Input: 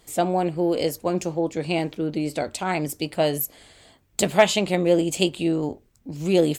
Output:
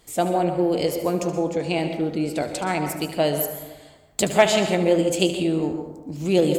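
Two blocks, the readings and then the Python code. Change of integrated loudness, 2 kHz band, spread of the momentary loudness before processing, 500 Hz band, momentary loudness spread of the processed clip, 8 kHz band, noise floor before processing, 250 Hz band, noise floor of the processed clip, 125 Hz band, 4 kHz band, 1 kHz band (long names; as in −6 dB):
+1.0 dB, +0.5 dB, 10 LU, +1.5 dB, 9 LU, +0.5 dB, −61 dBFS, +1.0 dB, −49 dBFS, +1.0 dB, +0.5 dB, +1.0 dB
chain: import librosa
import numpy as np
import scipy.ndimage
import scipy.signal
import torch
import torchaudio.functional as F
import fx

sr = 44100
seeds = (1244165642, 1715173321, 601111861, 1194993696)

y = x + 10.0 ** (-13.0 / 20.0) * np.pad(x, (int(74 * sr / 1000.0), 0))[:len(x)]
y = fx.rev_plate(y, sr, seeds[0], rt60_s=1.1, hf_ratio=0.4, predelay_ms=110, drr_db=7.0)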